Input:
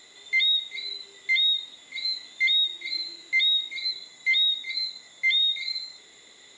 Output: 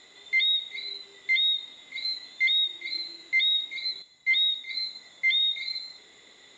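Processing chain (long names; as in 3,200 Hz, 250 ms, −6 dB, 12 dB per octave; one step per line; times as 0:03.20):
high-frequency loss of the air 74 metres
convolution reverb RT60 0.85 s, pre-delay 78 ms, DRR 19.5 dB
0:04.02–0:04.71: multiband upward and downward expander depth 40%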